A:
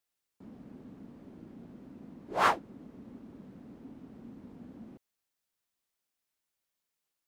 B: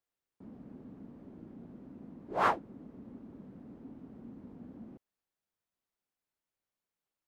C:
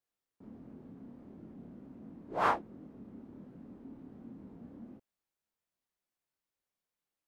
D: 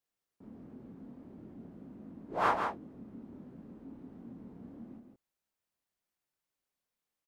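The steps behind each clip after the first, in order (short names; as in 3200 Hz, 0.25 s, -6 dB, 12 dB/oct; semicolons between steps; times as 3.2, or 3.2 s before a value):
high shelf 2200 Hz -11 dB
chorus 1.4 Hz, depth 7.8 ms; gain +2 dB
echo 0.164 s -6 dB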